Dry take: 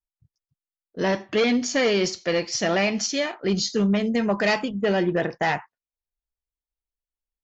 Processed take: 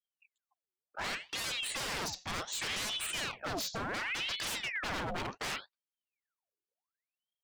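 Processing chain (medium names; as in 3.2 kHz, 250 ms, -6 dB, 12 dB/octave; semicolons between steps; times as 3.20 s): wavefolder -24 dBFS; ring modulator with a swept carrier 1.8 kHz, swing 80%, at 0.68 Hz; trim -4.5 dB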